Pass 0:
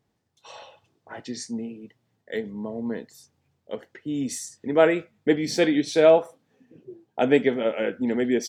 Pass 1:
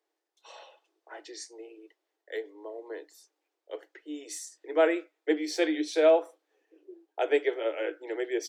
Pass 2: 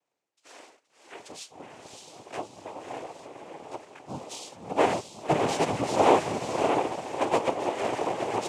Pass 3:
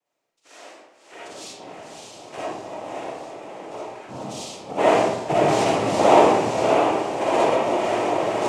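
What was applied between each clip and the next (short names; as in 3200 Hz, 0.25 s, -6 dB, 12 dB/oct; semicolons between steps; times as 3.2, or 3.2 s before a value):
Chebyshev high-pass 300 Hz, order 10; gain -5 dB
diffused feedback echo 0.603 s, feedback 48%, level -3 dB; noise vocoder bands 4
reverb RT60 0.95 s, pre-delay 15 ms, DRR -7.5 dB; gain -1.5 dB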